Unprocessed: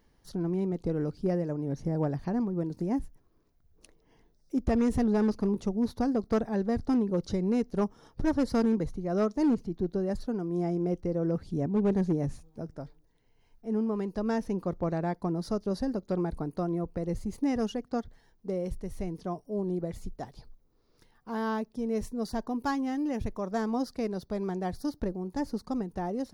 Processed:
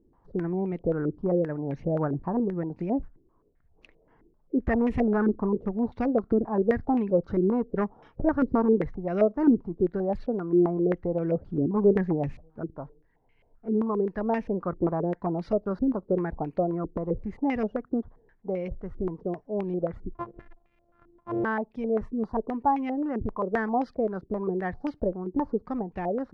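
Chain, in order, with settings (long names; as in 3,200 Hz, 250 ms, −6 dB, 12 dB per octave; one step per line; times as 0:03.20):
0:20.14–0:21.44: samples sorted by size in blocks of 128 samples
low-pass on a step sequencer 7.6 Hz 350–2,400 Hz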